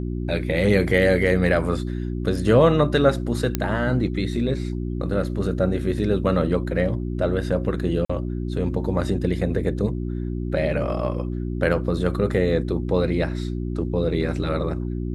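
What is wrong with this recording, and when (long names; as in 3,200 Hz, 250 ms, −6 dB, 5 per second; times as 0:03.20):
mains hum 60 Hz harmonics 6 −27 dBFS
0:03.55: click −7 dBFS
0:08.05–0:08.10: drop-out 45 ms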